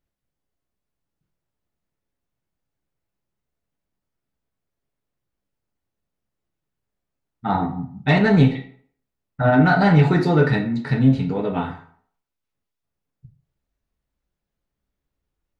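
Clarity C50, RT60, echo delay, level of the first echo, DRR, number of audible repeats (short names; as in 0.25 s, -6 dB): 10.0 dB, 0.55 s, none, none, 3.0 dB, none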